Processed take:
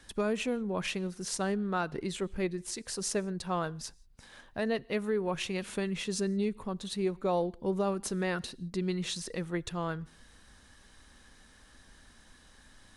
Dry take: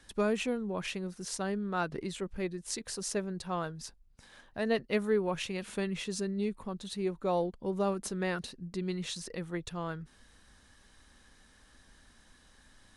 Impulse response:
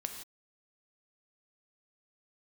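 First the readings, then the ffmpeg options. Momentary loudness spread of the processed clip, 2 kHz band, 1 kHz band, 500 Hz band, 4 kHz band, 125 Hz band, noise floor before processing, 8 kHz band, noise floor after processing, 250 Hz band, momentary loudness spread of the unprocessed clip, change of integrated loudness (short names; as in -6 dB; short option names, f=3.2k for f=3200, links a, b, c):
6 LU, +1.0 dB, +1.0 dB, +0.5 dB, +2.0 dB, +2.0 dB, -62 dBFS, +2.0 dB, -59 dBFS, +1.5 dB, 9 LU, +1.0 dB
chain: -filter_complex "[0:a]alimiter=limit=-24dB:level=0:latency=1:release=311,asplit=2[a][b];[1:a]atrim=start_sample=2205[c];[b][c]afir=irnorm=-1:irlink=0,volume=-18dB[d];[a][d]amix=inputs=2:normalize=0,volume=2dB"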